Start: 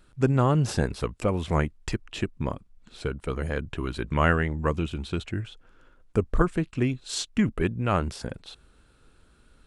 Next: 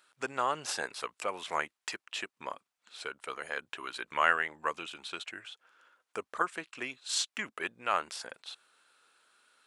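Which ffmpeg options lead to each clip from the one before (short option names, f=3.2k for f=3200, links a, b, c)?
-af "highpass=900"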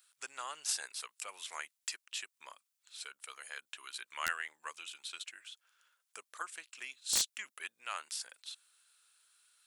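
-af "aderivative,aeval=exprs='(mod(14.1*val(0)+1,2)-1)/14.1':c=same,volume=3.5dB"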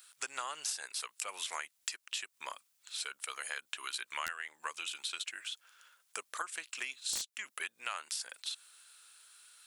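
-af "acompressor=threshold=-45dB:ratio=8,volume=10dB"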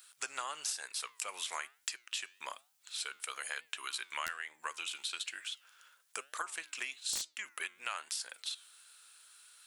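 -af "flanger=delay=6:depth=5.4:regen=89:speed=1.1:shape=triangular,volume=4.5dB"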